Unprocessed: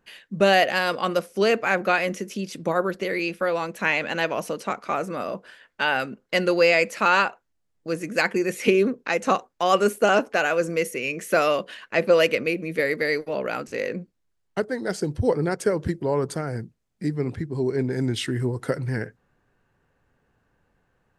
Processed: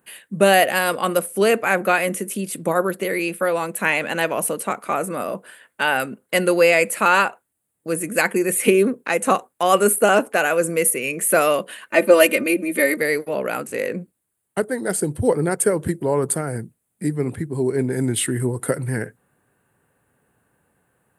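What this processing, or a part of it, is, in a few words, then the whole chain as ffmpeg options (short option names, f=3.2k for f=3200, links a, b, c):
budget condenser microphone: -filter_complex "[0:a]asettb=1/sr,asplit=3[a][b][c];[a]atrim=end=11.884[d];[b]atrim=start=11.88:end=12.98,asetpts=PTS-STARTPTS,afade=t=in:d=0.004:c=qsin,afade=t=out:st=1.096:d=0.004:c=qsin,aecho=1:1:3.3:0.92,atrim=end_sample=48510[e];[c]atrim=start=12.976[f];[d][e]acrossfade=d=0.004:c1=hsin:c2=qsin[g];[g][f]acrossfade=d=0.004:c1=qsin:c2=hsin,highpass=99,highshelf=f=7.3k:t=q:w=3:g=10.5,volume=3.5dB"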